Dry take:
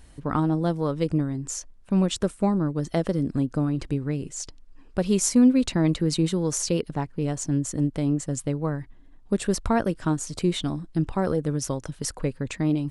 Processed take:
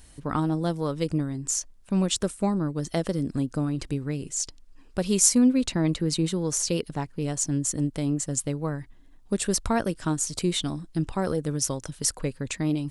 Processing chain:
high-shelf EQ 3,500 Hz +10 dB, from 0:05.38 +4.5 dB, from 0:06.69 +10.5 dB
level −2.5 dB

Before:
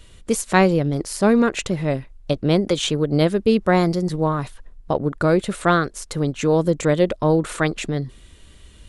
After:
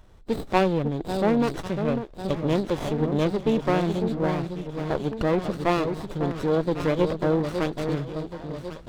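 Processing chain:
hearing-aid frequency compression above 3,300 Hz 4 to 1
delay that swaps between a low-pass and a high-pass 549 ms, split 860 Hz, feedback 69%, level −6.5 dB
windowed peak hold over 17 samples
level −5 dB

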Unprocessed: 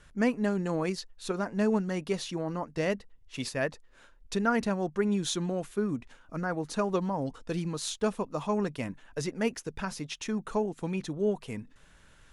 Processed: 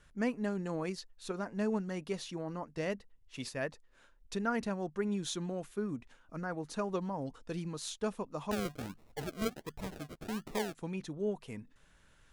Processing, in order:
0:08.51–0:10.75: sample-and-hold swept by an LFO 39×, swing 60% 1.4 Hz
level −6.5 dB

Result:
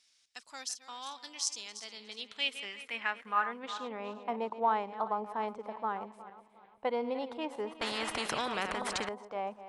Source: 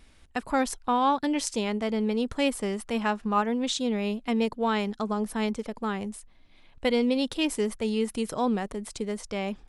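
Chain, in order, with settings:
feedback delay that plays each chunk backwards 180 ms, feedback 57%, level −12.5 dB
band-pass filter sweep 5,600 Hz → 870 Hz, 0:01.67–0:04.26
0:07.81–0:09.09: every bin compressed towards the loudest bin 4 to 1
level +2.5 dB

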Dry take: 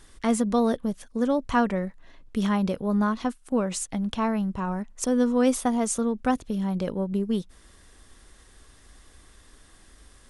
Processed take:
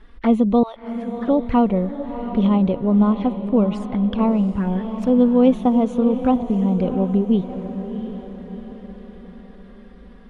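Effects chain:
0:00.63–0:01.28: high-pass filter 890 Hz 24 dB per octave
flanger swept by the level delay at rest 5 ms, full sweep at −23.5 dBFS
high-frequency loss of the air 400 metres
on a send: feedback delay with all-pass diffusion 703 ms, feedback 49%, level −10 dB
on the sum: level +8.5 dB

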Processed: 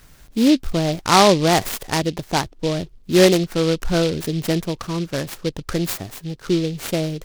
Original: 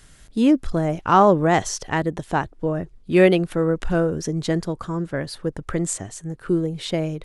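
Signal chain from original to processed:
short delay modulated by noise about 3,500 Hz, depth 0.083 ms
level +1.5 dB

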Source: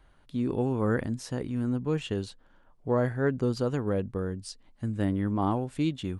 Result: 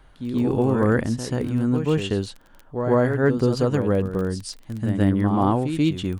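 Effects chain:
surface crackle 13 per second −36 dBFS
backwards echo 134 ms −7.5 dB
level +7 dB

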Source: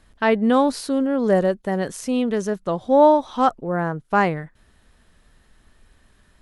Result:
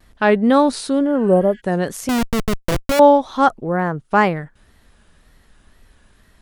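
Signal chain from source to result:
0:01.10–0:01.58: healed spectral selection 1,400–8,200 Hz before
0:02.09–0:03.00: comparator with hysteresis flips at −20 dBFS
tape wow and flutter 110 cents
level +3.5 dB

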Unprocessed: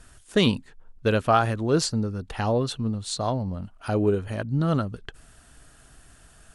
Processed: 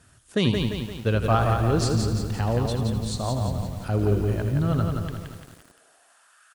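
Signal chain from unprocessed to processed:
high-pass filter sweep 100 Hz → 1,300 Hz, 0:04.97–0:06.36
echo with shifted repeats 82 ms, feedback 48%, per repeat −46 Hz, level −10.5 dB
feedback echo at a low word length 173 ms, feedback 55%, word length 7 bits, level −4 dB
level −4 dB

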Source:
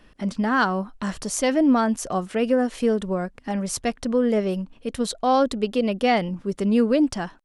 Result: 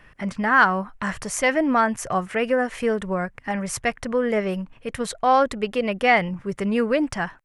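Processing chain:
octave-band graphic EQ 125/250/1,000/2,000/4,000 Hz +8/−7/+3/+10/−6 dB

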